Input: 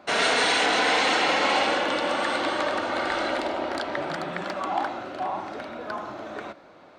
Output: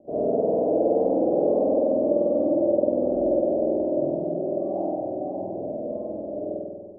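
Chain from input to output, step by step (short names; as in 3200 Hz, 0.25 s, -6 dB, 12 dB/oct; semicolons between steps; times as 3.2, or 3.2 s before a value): Chebyshev low-pass 630 Hz, order 5; spring tank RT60 1.6 s, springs 48 ms, chirp 80 ms, DRR -7 dB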